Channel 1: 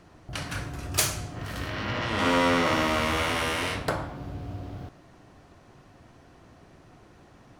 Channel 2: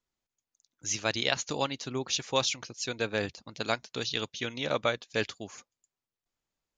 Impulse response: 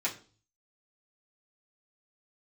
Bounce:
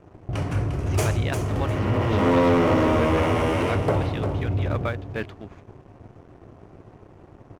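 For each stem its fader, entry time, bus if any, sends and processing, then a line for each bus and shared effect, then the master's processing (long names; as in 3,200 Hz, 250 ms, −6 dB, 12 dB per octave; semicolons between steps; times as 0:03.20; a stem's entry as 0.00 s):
−0.5 dB, 0.00 s, no send, echo send −9 dB, graphic EQ with 15 bands 100 Hz +7 dB, 400 Hz +6 dB, 1,600 Hz −8 dB, 4,000 Hz −11 dB, 16,000 Hz −10 dB
−2.5 dB, 0.00 s, no send, no echo send, low-pass filter 2,200 Hz 12 dB per octave; parametric band 510 Hz −5.5 dB 2.1 octaves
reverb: not used
echo: repeating echo 351 ms, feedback 24%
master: high-shelf EQ 3,000 Hz −11.5 dB; leveller curve on the samples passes 2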